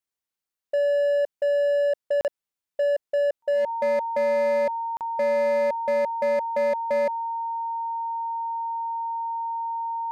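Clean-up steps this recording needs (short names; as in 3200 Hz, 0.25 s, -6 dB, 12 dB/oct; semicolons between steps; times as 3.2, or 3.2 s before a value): clip repair -19.5 dBFS; notch 920 Hz, Q 30; interpolate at 2.21/4.97, 38 ms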